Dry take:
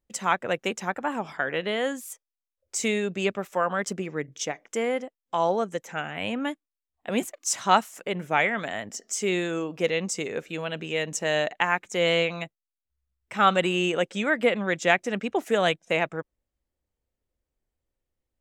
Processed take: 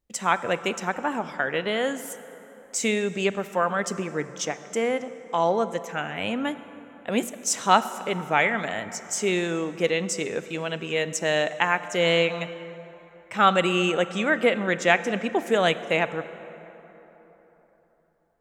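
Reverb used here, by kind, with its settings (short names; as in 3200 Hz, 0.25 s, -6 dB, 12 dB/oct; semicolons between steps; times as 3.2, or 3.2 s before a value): plate-style reverb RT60 3.9 s, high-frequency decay 0.5×, DRR 12.5 dB; gain +1.5 dB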